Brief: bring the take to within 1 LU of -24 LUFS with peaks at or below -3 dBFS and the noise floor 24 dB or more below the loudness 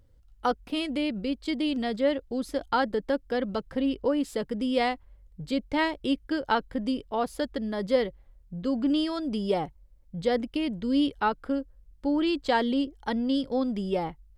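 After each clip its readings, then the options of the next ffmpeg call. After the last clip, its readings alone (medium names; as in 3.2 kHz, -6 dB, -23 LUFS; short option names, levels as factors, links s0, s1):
loudness -28.5 LUFS; peak level -12.0 dBFS; loudness target -24.0 LUFS
-> -af "volume=1.68"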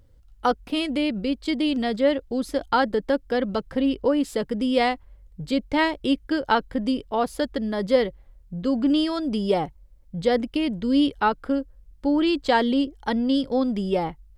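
loudness -24.0 LUFS; peak level -7.5 dBFS; noise floor -53 dBFS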